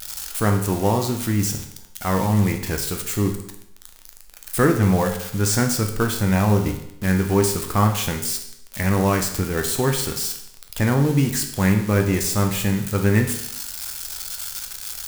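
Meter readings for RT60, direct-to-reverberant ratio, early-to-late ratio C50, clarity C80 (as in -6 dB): 0.75 s, 4.0 dB, 8.5 dB, 11.0 dB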